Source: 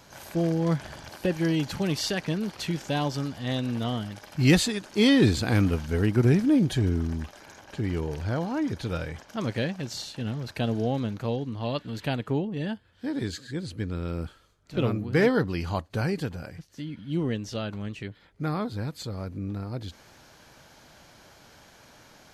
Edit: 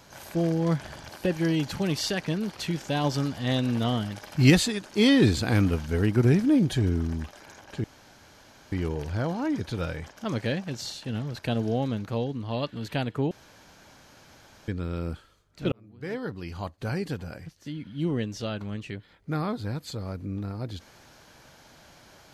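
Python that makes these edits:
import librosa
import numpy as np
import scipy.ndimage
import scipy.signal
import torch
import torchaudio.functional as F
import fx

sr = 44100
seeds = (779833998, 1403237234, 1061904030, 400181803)

y = fx.edit(x, sr, fx.clip_gain(start_s=3.04, length_s=1.46, db=3.0),
    fx.insert_room_tone(at_s=7.84, length_s=0.88),
    fx.room_tone_fill(start_s=12.43, length_s=1.37),
    fx.fade_in_span(start_s=14.84, length_s=1.67), tone=tone)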